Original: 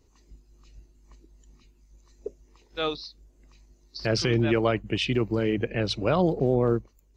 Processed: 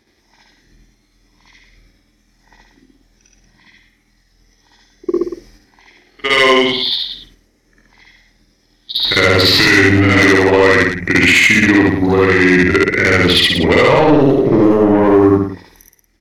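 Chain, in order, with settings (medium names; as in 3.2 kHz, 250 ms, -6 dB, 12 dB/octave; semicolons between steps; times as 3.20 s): high-pass 330 Hz 6 dB/octave; gate -55 dBFS, range -11 dB; peaking EQ 2.3 kHz +12.5 dB 0.37 oct; in parallel at 0 dB: compression 6:1, threshold -31 dBFS, peak gain reduction 12.5 dB; on the sum: granular stretch 1.9×, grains 177 ms; sine folder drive 6 dB, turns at -8 dBFS; tape speed -16%; saturation -10.5 dBFS, distortion -18 dB; on a send: loudspeakers at several distances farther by 25 m -1 dB, 63 m -9 dB; on the sum: loudness maximiser +7 dB; trim -1 dB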